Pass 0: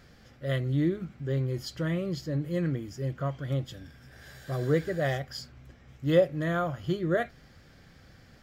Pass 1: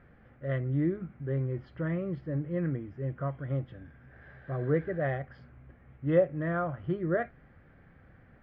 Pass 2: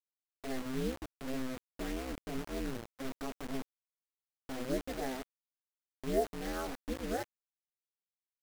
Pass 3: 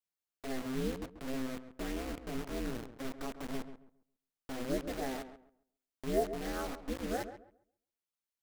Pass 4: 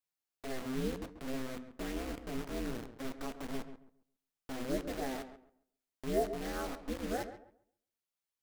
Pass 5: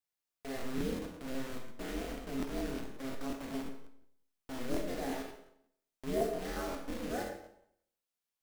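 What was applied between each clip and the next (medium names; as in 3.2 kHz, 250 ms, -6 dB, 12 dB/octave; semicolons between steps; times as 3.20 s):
low-pass 2.1 kHz 24 dB/octave; trim -2 dB
treble shelf 2.6 kHz -11 dB; bit crusher 6-bit; ring modulator 130 Hz; trim -4 dB
filtered feedback delay 136 ms, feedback 25%, low-pass 1.6 kHz, level -10.5 dB
flange 0.24 Hz, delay 7.1 ms, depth 9 ms, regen -82%; trim +4 dB
Schroeder reverb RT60 0.6 s, combs from 26 ms, DRR 2 dB; crackling interface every 0.18 s, samples 1024, repeat, from 0.40 s; trim -2 dB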